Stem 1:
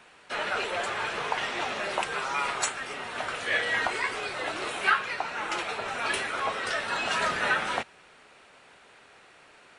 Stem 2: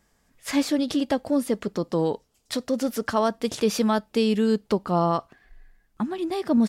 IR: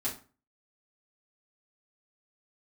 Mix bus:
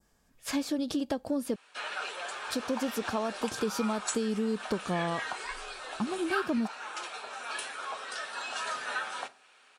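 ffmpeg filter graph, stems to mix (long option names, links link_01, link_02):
-filter_complex "[0:a]highpass=frequency=1300:poles=1,adelay=1450,volume=-3.5dB,asplit=2[link_01][link_02];[link_02]volume=-13.5dB[link_03];[1:a]acompressor=threshold=-24dB:ratio=5,volume=-3dB,asplit=3[link_04][link_05][link_06];[link_04]atrim=end=1.56,asetpts=PTS-STARTPTS,afade=type=out:start_time=1.556:duration=0.004:curve=hsin[link_07];[link_05]atrim=start=1.56:end=2.36,asetpts=PTS-STARTPTS,volume=0[link_08];[link_06]atrim=start=2.36,asetpts=PTS-STARTPTS,afade=type=in:duration=0.004:curve=hsin[link_09];[link_07][link_08][link_09]concat=n=3:v=0:a=1,asplit=2[link_10][link_11];[link_11]apad=whole_len=495545[link_12];[link_01][link_12]sidechaincompress=threshold=-31dB:ratio=8:attack=31:release=126[link_13];[2:a]atrim=start_sample=2205[link_14];[link_03][link_14]afir=irnorm=-1:irlink=0[link_15];[link_13][link_10][link_15]amix=inputs=3:normalize=0,bandreject=frequency=2000:width=8.4,adynamicequalizer=threshold=0.00447:dfrequency=2500:dqfactor=1.1:tfrequency=2500:tqfactor=1.1:attack=5:release=100:ratio=0.375:range=3:mode=cutabove:tftype=bell"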